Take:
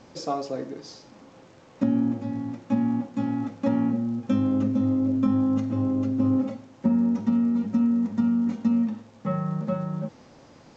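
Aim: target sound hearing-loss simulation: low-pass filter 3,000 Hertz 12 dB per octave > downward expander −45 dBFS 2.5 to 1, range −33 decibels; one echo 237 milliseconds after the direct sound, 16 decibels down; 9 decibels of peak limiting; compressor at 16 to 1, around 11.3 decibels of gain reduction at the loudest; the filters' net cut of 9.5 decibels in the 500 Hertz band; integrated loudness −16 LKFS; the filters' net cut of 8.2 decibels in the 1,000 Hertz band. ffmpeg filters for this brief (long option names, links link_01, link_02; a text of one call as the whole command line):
ffmpeg -i in.wav -af "equalizer=frequency=500:width_type=o:gain=-9,equalizer=frequency=1000:width_type=o:gain=-8,acompressor=threshold=-31dB:ratio=16,alimiter=level_in=7.5dB:limit=-24dB:level=0:latency=1,volume=-7.5dB,lowpass=3000,aecho=1:1:237:0.158,agate=range=-33dB:threshold=-45dB:ratio=2.5,volume=23dB" out.wav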